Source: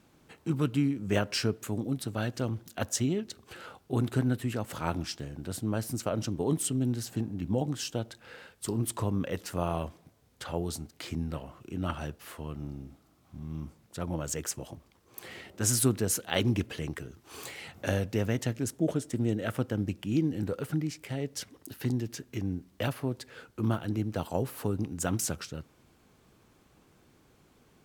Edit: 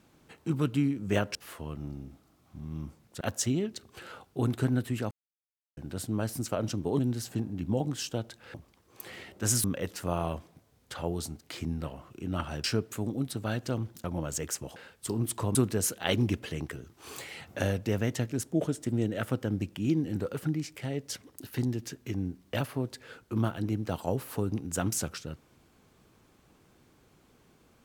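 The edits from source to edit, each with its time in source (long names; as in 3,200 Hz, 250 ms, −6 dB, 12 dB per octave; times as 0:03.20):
0:01.35–0:02.75: swap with 0:12.14–0:14.00
0:04.65–0:05.31: silence
0:06.53–0:06.80: remove
0:08.35–0:09.14: swap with 0:14.72–0:15.82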